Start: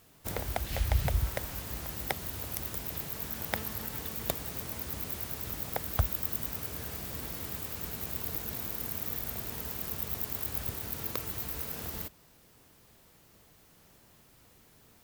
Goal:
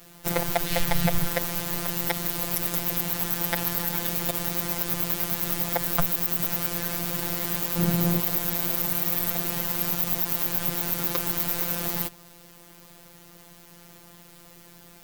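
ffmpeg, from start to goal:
-filter_complex "[0:a]asettb=1/sr,asplit=3[a][b][c];[a]atrim=end=7.764[d];[b]atrim=start=7.76:end=8.2,asetpts=PTS-STARTPTS,afade=t=in:d=0.004:c=qsin,afade=t=out:st=0.436:d=0.004:c=qsin,equalizer=f=170:w=0.35:g=12.5[e];[c]atrim=start=8.196[f];[d][e]acrossfade=d=0.004:c1=hsin:c2=qsin[g];[g][f]acrossfade=d=0.004:c1=qsin:c2=hsin,afftfilt=real='hypot(re,im)*cos(PI*b)':imag='0':win_size=1024:overlap=0.75,alimiter=level_in=15dB:limit=-1dB:release=50:level=0:latency=1,volume=-1dB"

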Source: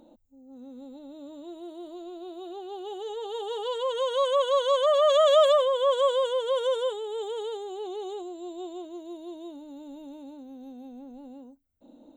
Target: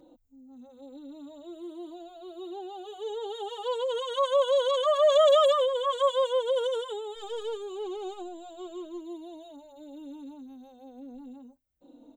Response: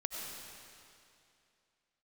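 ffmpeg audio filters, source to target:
-filter_complex "[0:a]asplit=3[a][b][c];[a]afade=t=out:st=7.15:d=0.02[d];[b]aeval=exprs='0.0562*(cos(1*acos(clip(val(0)/0.0562,-1,1)))-cos(1*PI/2))+0.00398*(cos(4*acos(clip(val(0)/0.0562,-1,1)))-cos(4*PI/2))':c=same,afade=t=in:st=7.15:d=0.02,afade=t=out:st=8.99:d=0.02[e];[c]afade=t=in:st=8.99:d=0.02[f];[d][e][f]amix=inputs=3:normalize=0,asplit=2[g][h];[h]adelay=3.5,afreqshift=-1.1[i];[g][i]amix=inputs=2:normalize=1,volume=1.5dB"

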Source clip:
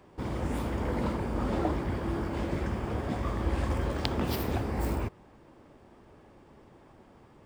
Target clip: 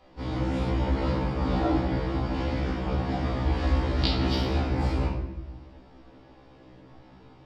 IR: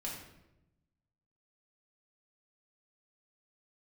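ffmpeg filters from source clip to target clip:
-filter_complex "[0:a]lowpass=f=4.6k:t=q:w=2.1[a];[1:a]atrim=start_sample=2205[b];[a][b]afir=irnorm=-1:irlink=0,afftfilt=real='re*1.73*eq(mod(b,3),0)':imag='im*1.73*eq(mod(b,3),0)':win_size=2048:overlap=0.75,volume=4.5dB"

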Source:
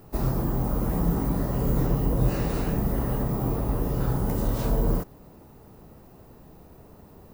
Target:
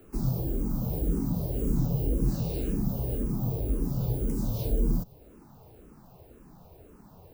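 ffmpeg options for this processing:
-filter_complex "[0:a]bandreject=f=1.9k:w=12,acrossover=split=100|550|2900[a][b][c][d];[c]acompressor=threshold=-53dB:ratio=6[e];[a][b][e][d]amix=inputs=4:normalize=0,asplit=2[f][g];[g]afreqshift=-1.9[h];[f][h]amix=inputs=2:normalize=1"

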